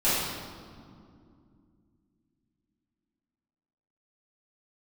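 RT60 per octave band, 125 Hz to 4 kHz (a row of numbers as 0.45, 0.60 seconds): 3.5, 3.7, 2.6, 2.1, 1.5, 1.4 seconds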